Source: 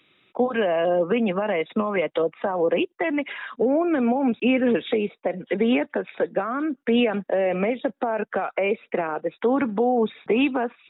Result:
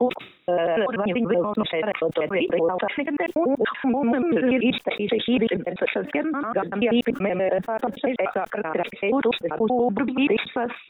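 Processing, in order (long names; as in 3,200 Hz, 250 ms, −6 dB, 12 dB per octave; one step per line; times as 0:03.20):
slices reordered back to front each 96 ms, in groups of 5
level that may fall only so fast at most 130 dB per second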